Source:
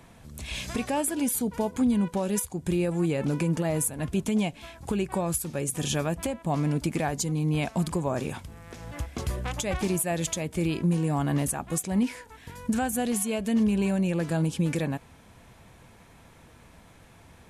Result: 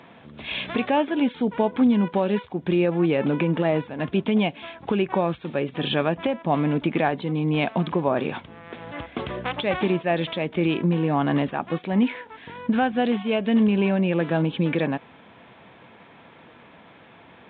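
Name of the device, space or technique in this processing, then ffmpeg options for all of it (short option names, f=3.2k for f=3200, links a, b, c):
Bluetooth headset: -af "highpass=210,aresample=8000,aresample=44100,volume=7dB" -ar 16000 -c:a sbc -b:a 64k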